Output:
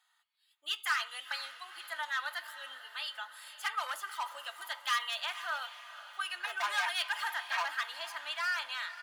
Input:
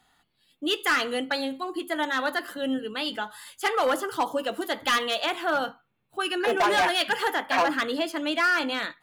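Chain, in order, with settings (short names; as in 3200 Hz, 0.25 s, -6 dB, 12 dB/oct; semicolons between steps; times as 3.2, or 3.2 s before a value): HPF 970 Hz 24 dB/oct; comb 3.2 ms, depth 45%; on a send: diffused feedback echo 0.486 s, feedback 56%, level -14 dB; on the sum: gain -8 dB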